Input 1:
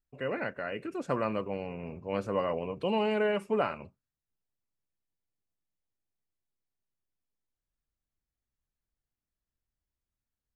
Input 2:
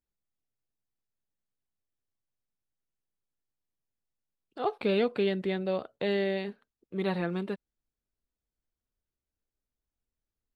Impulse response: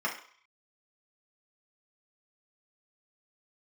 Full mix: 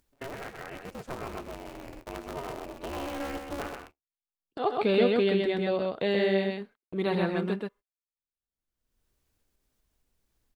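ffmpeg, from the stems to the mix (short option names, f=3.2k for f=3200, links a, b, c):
-filter_complex "[0:a]agate=range=-16dB:threshold=-43dB:ratio=16:detection=peak,aeval=exprs='val(0)*sgn(sin(2*PI*140*n/s))':c=same,volume=-8dB,asplit=2[a][b];[b]volume=-6dB[c];[1:a]volume=2.5dB,asplit=3[d][e][f];[e]volume=-20.5dB[g];[f]volume=-3dB[h];[2:a]atrim=start_sample=2205[i];[g][i]afir=irnorm=-1:irlink=0[j];[c][h]amix=inputs=2:normalize=0,aecho=0:1:129:1[k];[a][d][j][k]amix=inputs=4:normalize=0,agate=range=-42dB:threshold=-49dB:ratio=16:detection=peak,acompressor=mode=upward:threshold=-35dB:ratio=2.5"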